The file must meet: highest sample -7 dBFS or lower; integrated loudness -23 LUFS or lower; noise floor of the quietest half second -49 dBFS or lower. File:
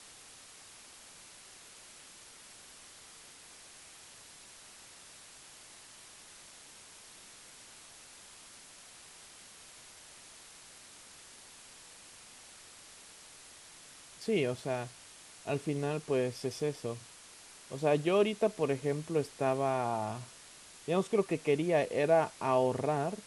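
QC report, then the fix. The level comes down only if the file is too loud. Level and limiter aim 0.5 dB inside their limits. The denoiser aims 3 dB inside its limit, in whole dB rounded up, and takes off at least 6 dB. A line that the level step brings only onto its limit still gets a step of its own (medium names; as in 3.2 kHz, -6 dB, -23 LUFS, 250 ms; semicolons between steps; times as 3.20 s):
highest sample -15.5 dBFS: pass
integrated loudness -32.5 LUFS: pass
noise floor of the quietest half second -54 dBFS: pass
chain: none needed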